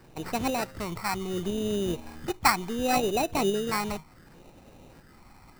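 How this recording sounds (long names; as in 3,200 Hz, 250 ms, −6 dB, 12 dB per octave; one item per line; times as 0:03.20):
phaser sweep stages 12, 0.7 Hz, lowest notch 480–2,100 Hz
aliases and images of a low sample rate 3,300 Hz, jitter 0%
tremolo saw up 2 Hz, depth 35%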